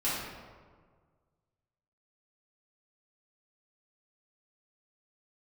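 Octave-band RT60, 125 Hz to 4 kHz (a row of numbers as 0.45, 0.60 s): 2.1, 1.7, 1.7, 1.6, 1.2, 0.85 s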